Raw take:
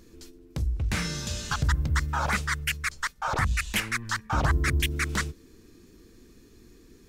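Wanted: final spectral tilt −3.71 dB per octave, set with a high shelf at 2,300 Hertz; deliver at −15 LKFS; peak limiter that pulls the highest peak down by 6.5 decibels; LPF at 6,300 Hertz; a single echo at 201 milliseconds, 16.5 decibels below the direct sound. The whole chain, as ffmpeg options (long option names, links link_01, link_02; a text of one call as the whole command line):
ffmpeg -i in.wav -af "lowpass=6300,highshelf=frequency=2300:gain=5,alimiter=limit=-18dB:level=0:latency=1,aecho=1:1:201:0.15,volume=14dB" out.wav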